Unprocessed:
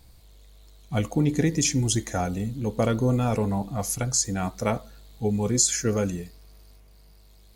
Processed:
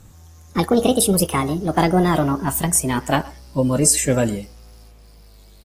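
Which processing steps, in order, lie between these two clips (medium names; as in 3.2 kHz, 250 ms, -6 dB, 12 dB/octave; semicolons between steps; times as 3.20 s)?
gliding tape speed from 168% -> 100%; speakerphone echo 120 ms, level -21 dB; trim +6.5 dB; AAC 48 kbps 32 kHz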